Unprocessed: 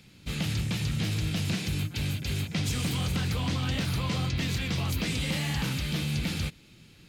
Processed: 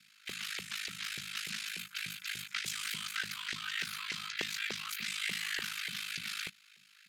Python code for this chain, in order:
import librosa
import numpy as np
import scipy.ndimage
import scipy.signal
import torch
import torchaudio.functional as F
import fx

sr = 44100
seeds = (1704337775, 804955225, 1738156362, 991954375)

y = scipy.signal.sosfilt(scipy.signal.cheby1(3, 1.0, [180.0, 1400.0], 'bandstop', fs=sr, output='sos'), x)
y = y * np.sin(2.0 * np.pi * 26.0 * np.arange(len(y)) / sr)
y = fx.filter_lfo_highpass(y, sr, shape='saw_up', hz=3.4, low_hz=390.0, high_hz=2000.0, q=2.7)